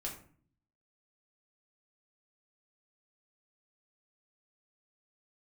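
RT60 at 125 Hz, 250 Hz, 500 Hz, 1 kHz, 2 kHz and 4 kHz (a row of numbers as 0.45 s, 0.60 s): 0.90 s, 0.80 s, 0.50 s, 0.45 s, 0.40 s, 0.30 s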